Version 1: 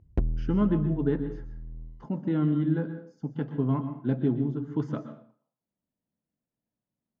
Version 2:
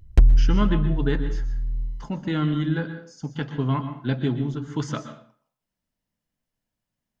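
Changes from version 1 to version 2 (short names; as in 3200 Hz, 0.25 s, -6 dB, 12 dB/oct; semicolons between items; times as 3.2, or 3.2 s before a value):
background: send on; master: remove band-pass 290 Hz, Q 0.67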